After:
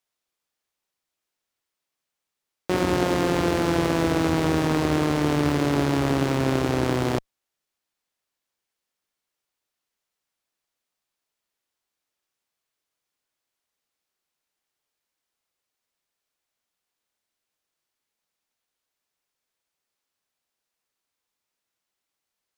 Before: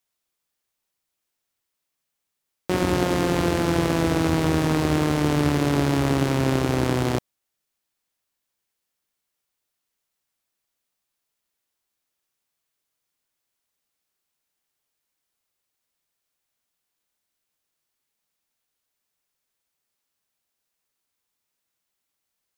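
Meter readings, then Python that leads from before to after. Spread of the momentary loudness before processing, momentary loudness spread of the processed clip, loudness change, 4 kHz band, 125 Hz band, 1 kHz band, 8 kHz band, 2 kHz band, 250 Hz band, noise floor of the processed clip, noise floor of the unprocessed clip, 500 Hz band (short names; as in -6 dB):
3 LU, 3 LU, -1.0 dB, -1.0 dB, -2.5 dB, 0.0 dB, -2.0 dB, -0.5 dB, -0.5 dB, -85 dBFS, -81 dBFS, 0.0 dB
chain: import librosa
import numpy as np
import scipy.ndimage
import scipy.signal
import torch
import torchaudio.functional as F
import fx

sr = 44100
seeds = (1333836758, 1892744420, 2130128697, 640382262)

p1 = fx.high_shelf(x, sr, hz=5900.0, db=-11.5)
p2 = fx.schmitt(p1, sr, flips_db=-36.5)
p3 = p1 + (p2 * 10.0 ** (-10.0 / 20.0))
y = fx.bass_treble(p3, sr, bass_db=-4, treble_db=4)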